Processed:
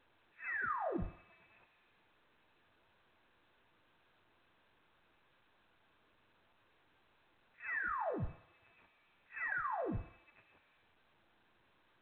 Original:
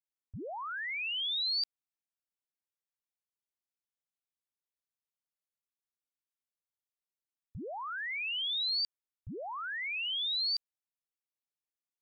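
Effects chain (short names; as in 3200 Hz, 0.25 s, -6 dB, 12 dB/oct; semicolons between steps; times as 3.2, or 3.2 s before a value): one diode to ground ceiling -39.5 dBFS; inverse Chebyshev high-pass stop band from 380 Hz, stop band 40 dB; in parallel at -1.5 dB: limiter -41 dBFS, peak gain reduction 11.5 dB; on the sum: compressor 4:1, threshold -48 dBFS, peak gain reduction 14 dB; short-mantissa float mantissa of 2-bit; flange 0.93 Hz, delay 2.6 ms, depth 8 ms, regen -52%; LPC vocoder at 8 kHz pitch kept; reverb RT60 1.0 s, pre-delay 4 ms, DRR 6.5 dB; inverted band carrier 2600 Hz; gain +12 dB; A-law 64 kbps 8000 Hz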